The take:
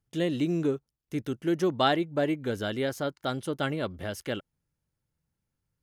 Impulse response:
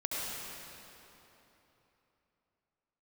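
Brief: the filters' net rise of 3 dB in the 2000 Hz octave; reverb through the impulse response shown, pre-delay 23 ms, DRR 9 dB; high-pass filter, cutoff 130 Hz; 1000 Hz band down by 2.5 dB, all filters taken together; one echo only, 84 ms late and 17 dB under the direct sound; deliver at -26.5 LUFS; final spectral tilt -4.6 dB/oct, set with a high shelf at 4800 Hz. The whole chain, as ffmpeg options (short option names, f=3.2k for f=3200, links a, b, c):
-filter_complex "[0:a]highpass=130,equalizer=f=1k:t=o:g=-6,equalizer=f=2k:t=o:g=5,highshelf=f=4.8k:g=8.5,aecho=1:1:84:0.141,asplit=2[a][b];[1:a]atrim=start_sample=2205,adelay=23[c];[b][c]afir=irnorm=-1:irlink=0,volume=-14.5dB[d];[a][d]amix=inputs=2:normalize=0,volume=3dB"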